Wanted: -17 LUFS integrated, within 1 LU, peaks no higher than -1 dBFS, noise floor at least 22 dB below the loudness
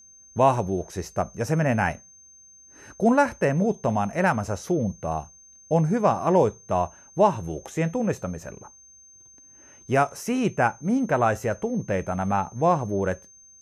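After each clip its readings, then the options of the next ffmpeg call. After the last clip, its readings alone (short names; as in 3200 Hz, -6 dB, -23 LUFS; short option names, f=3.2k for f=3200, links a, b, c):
steady tone 6300 Hz; tone level -49 dBFS; loudness -24.5 LUFS; peak -6.5 dBFS; loudness target -17.0 LUFS
-> -af "bandreject=f=6.3k:w=30"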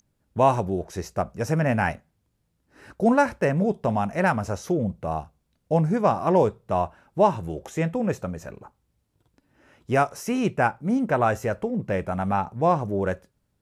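steady tone none; loudness -24.5 LUFS; peak -6.5 dBFS; loudness target -17.0 LUFS
-> -af "volume=7.5dB,alimiter=limit=-1dB:level=0:latency=1"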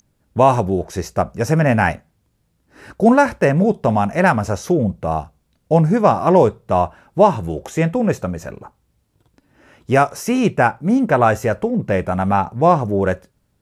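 loudness -17.5 LUFS; peak -1.0 dBFS; noise floor -65 dBFS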